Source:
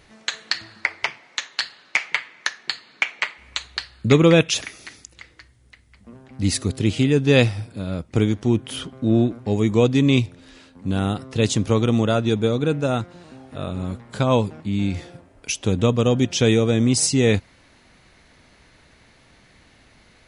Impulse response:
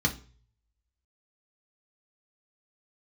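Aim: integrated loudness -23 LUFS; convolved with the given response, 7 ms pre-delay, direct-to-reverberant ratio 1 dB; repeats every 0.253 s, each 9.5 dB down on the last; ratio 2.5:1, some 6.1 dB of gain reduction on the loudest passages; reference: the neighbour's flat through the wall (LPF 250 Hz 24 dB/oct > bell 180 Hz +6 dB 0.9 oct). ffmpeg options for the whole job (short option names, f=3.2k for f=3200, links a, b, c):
-filter_complex "[0:a]acompressor=threshold=-19dB:ratio=2.5,aecho=1:1:253|506|759|1012:0.335|0.111|0.0365|0.012,asplit=2[a][b];[1:a]atrim=start_sample=2205,adelay=7[c];[b][c]afir=irnorm=-1:irlink=0,volume=-10.5dB[d];[a][d]amix=inputs=2:normalize=0,lowpass=f=250:w=0.5412,lowpass=f=250:w=1.3066,equalizer=f=180:t=o:w=0.9:g=6,volume=-8dB"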